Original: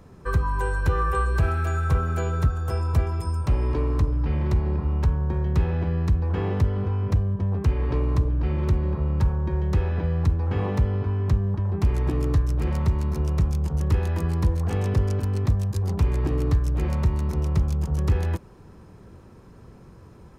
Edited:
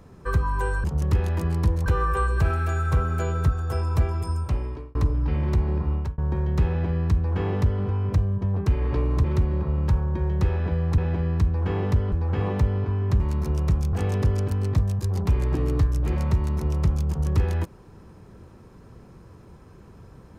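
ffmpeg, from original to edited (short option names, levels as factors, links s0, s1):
-filter_complex "[0:a]asplit=10[s0][s1][s2][s3][s4][s5][s6][s7][s8][s9];[s0]atrim=end=0.842[s10];[s1]atrim=start=13.628:end=14.652[s11];[s2]atrim=start=0.838:end=3.93,asetpts=PTS-STARTPTS,afade=t=out:st=2.482:d=0.61[s12];[s3]atrim=start=3.93:end=5.16,asetpts=PTS-STARTPTS,afade=t=in:d=0.004:c=hsin,afade=t=out:st=0.98:d=0.25[s13];[s4]atrim=start=5.16:end=8.222,asetpts=PTS-STARTPTS,afade=t=in:d=0.004:c=hsin[s14];[s5]atrim=start=8.558:end=10.302[s15];[s6]atrim=start=5.658:end=6.802[s16];[s7]atrim=start=10.298:end=11.382[s17];[s8]atrim=start=12.898:end=13.632[s18];[s9]atrim=start=14.648[s19];[s10][s11]acrossfade=d=0.004:c1=hsin:c2=hsin[s20];[s12][s13][s14]concat=n=3:v=0:a=1[s21];[s20][s21]acrossfade=d=0.004:c1=hsin:c2=hsin[s22];[s22][s15]acrossfade=d=0.004:c1=hsin:c2=hsin[s23];[s23][s16]acrossfade=d=0.004:c1=hsin:c2=hsin[s24];[s24][s17]acrossfade=d=0.004:c1=hsin:c2=hsin[s25];[s25][s18]acrossfade=d=0.004:c1=hsin:c2=hsin[s26];[s26][s19]acrossfade=d=0.004:c1=hsin:c2=hsin"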